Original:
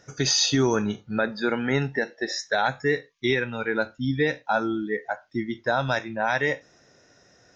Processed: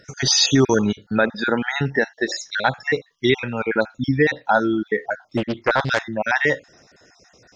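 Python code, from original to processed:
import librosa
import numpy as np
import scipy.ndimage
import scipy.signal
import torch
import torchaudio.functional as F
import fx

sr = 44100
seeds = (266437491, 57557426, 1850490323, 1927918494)

y = fx.spec_dropout(x, sr, seeds[0], share_pct=33)
y = fx.doppler_dist(y, sr, depth_ms=0.68, at=(5.37, 6.02))
y = y * librosa.db_to_amplitude(6.5)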